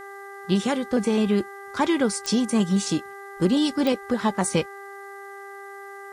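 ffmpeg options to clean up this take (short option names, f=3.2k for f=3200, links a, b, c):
-af "adeclick=t=4,bandreject=f=397:t=h:w=4,bandreject=f=794:t=h:w=4,bandreject=f=1.191k:t=h:w=4,bandreject=f=1.588k:t=h:w=4,bandreject=f=1.985k:t=h:w=4,agate=range=-21dB:threshold=-32dB"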